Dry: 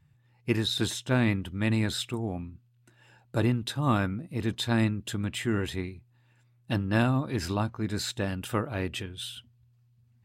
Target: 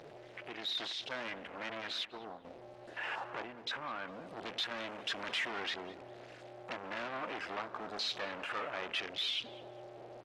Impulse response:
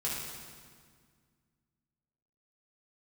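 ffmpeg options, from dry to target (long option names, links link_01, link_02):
-filter_complex "[0:a]aeval=exprs='val(0)+0.5*0.0398*sgn(val(0))':channel_layout=same,afwtdn=0.0178,asettb=1/sr,asplit=3[link_01][link_02][link_03];[link_01]atrim=end=2.054[link_04];[link_02]atrim=start=2.05:end=2.45,asetpts=PTS-STARTPTS,afade=type=in:duration=0.004:curve=qsin,afade=type=out:start_time=0.396:duration=0.004:curve=qsin,agate=range=-33dB:threshold=-21dB:ratio=3:detection=peak[link_05];[link_03]atrim=start=2.446[link_06];[link_04][link_05]acrossfade=duration=0.004:curve1=hsin:curve2=qsin[link_07];[link_07][link_06]acrossfade=duration=0.004:curve1=qsin:curve2=hsin,asettb=1/sr,asplit=3[link_08][link_09][link_10];[link_08]atrim=end=4.584[link_11];[link_09]atrim=start=4.58:end=5.51,asetpts=PTS-STARTPTS,afade=type=in:duration=0.004:curve=qsin,afade=type=out:start_time=0.926:duration=0.004:curve=qsin,aemphasis=mode=production:type=cd[link_12];[link_10]atrim=start=5.506[link_13];[link_11][link_12]acrossfade=duration=0.004:curve1=hsin:curve2=qsin[link_14];[link_14][link_13]acrossfade=duration=0.004:curve1=qsin:curve2=hsin,alimiter=limit=-19.5dB:level=0:latency=1:release=470,asettb=1/sr,asplit=3[link_15][link_16][link_17];[link_15]atrim=end=3.424[link_18];[link_16]atrim=start=3.42:end=4.08,asetpts=PTS-STARTPTS,afade=type=in:duration=0.004:curve=qsin,afade=type=out:start_time=0.656:duration=0.004:curve=qsin,acompressor=threshold=-31dB:ratio=6[link_19];[link_17]atrim=start=4.076[link_20];[link_18][link_19]acrossfade=duration=0.004:curve1=hsin:curve2=qsin[link_21];[link_21][link_20]acrossfade=duration=0.004:curve1=qsin:curve2=hsin,asoftclip=type=hard:threshold=-30.5dB,highpass=630,lowpass=4400,asplit=2[link_22][link_23];[link_23]adelay=202,lowpass=frequency=1800:poles=1,volume=-14dB,asplit=2[link_24][link_25];[link_25]adelay=202,lowpass=frequency=1800:poles=1,volume=0.49,asplit=2[link_26][link_27];[link_27]adelay=202,lowpass=frequency=1800:poles=1,volume=0.49,asplit=2[link_28][link_29];[link_29]adelay=202,lowpass=frequency=1800:poles=1,volume=0.49,asplit=2[link_30][link_31];[link_31]adelay=202,lowpass=frequency=1800:poles=1,volume=0.49[link_32];[link_22][link_24][link_26][link_28][link_30][link_32]amix=inputs=6:normalize=0" -ar 48000 -c:a libopus -b:a 20k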